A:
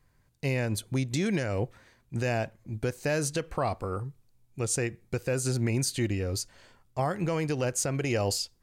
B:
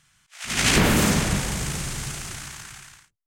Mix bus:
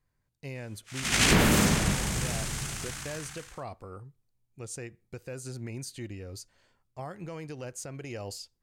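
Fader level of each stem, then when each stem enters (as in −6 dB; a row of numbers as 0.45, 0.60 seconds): −11.0, −3.0 decibels; 0.00, 0.55 seconds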